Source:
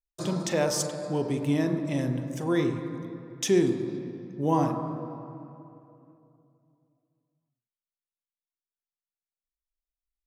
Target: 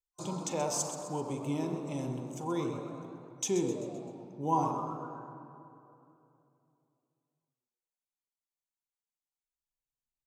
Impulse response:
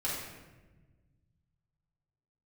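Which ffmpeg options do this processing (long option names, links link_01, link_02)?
-filter_complex "[0:a]superequalizer=9b=2.51:11b=0.316:15b=2.24,asplit=6[link_01][link_02][link_03][link_04][link_05][link_06];[link_02]adelay=129,afreqshift=110,volume=-11dB[link_07];[link_03]adelay=258,afreqshift=220,volume=-17.2dB[link_08];[link_04]adelay=387,afreqshift=330,volume=-23.4dB[link_09];[link_05]adelay=516,afreqshift=440,volume=-29.6dB[link_10];[link_06]adelay=645,afreqshift=550,volume=-35.8dB[link_11];[link_01][link_07][link_08][link_09][link_10][link_11]amix=inputs=6:normalize=0,volume=-8.5dB"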